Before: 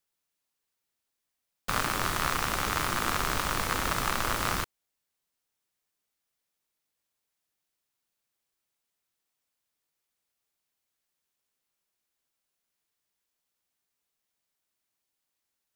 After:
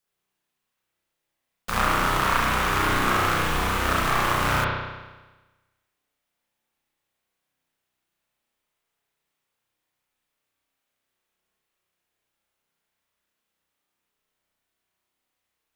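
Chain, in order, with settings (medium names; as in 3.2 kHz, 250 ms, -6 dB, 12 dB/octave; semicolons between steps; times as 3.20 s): 3.38–3.80 s: hard clipper -23 dBFS, distortion -19 dB; spring tank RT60 1.2 s, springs 32 ms, chirp 50 ms, DRR -6.5 dB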